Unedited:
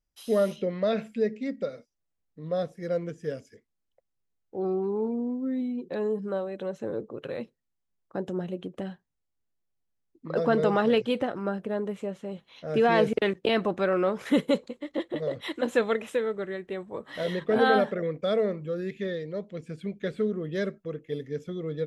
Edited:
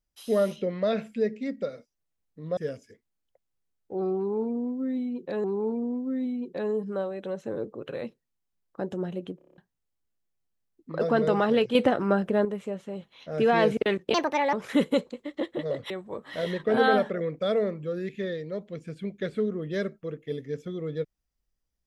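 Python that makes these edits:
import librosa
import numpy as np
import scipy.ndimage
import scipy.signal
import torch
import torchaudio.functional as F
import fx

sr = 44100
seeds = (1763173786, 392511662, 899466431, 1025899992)

y = fx.edit(x, sr, fx.cut(start_s=2.57, length_s=0.63),
    fx.repeat(start_s=4.8, length_s=1.27, count=2),
    fx.stutter_over(start_s=8.73, slice_s=0.03, count=7),
    fx.clip_gain(start_s=11.11, length_s=0.7, db=6.5),
    fx.speed_span(start_s=13.5, length_s=0.6, speed=1.53),
    fx.cut(start_s=15.47, length_s=1.25), tone=tone)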